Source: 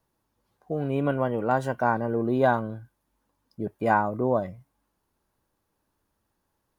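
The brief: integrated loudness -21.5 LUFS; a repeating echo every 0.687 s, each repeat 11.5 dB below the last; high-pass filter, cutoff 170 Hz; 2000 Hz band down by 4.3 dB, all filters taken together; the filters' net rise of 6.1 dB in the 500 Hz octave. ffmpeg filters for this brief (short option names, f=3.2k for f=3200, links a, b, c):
-af "highpass=170,equalizer=f=500:t=o:g=8,equalizer=f=2k:t=o:g=-8,aecho=1:1:687|1374|2061:0.266|0.0718|0.0194,volume=2dB"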